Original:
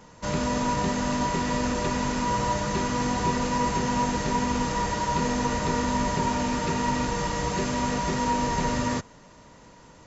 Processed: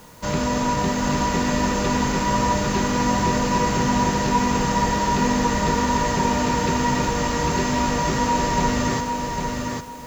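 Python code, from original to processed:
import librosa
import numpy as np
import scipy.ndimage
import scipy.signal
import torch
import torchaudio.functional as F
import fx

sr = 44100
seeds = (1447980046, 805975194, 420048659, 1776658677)

p1 = fx.quant_dither(x, sr, seeds[0], bits=8, dither='triangular')
p2 = x + (p1 * librosa.db_to_amplitude(-5.0))
y = fx.echo_feedback(p2, sr, ms=800, feedback_pct=25, wet_db=-4.5)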